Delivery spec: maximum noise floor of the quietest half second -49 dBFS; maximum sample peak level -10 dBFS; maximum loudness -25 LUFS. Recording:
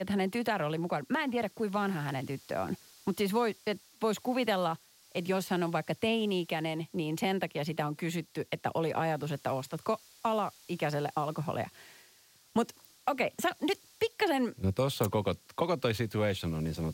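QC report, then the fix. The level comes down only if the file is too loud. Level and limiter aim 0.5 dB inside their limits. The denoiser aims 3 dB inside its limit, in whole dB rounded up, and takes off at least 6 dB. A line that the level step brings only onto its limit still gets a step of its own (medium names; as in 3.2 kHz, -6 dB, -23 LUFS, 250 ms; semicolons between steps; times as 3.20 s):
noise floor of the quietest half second -62 dBFS: pass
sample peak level -17.0 dBFS: pass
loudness -33.0 LUFS: pass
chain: none needed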